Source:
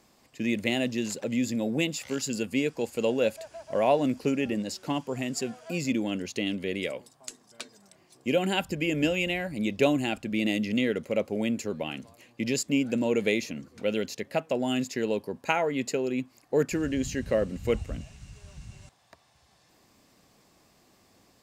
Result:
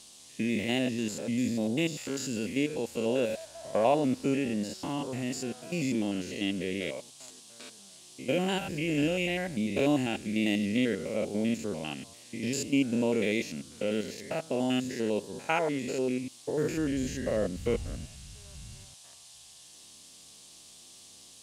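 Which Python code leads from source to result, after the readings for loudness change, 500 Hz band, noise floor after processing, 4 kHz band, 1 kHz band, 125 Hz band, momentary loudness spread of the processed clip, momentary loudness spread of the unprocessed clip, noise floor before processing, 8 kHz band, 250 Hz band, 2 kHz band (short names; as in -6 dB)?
-2.0 dB, -2.5 dB, -53 dBFS, -2.5 dB, -2.0 dB, -1.0 dB, 21 LU, 13 LU, -63 dBFS, -2.0 dB, -1.0 dB, -3.0 dB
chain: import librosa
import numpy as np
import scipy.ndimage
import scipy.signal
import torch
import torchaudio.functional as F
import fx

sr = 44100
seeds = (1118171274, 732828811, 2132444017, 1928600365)

y = fx.spec_steps(x, sr, hold_ms=100)
y = fx.dmg_noise_band(y, sr, seeds[0], low_hz=2900.0, high_hz=10000.0, level_db=-53.0)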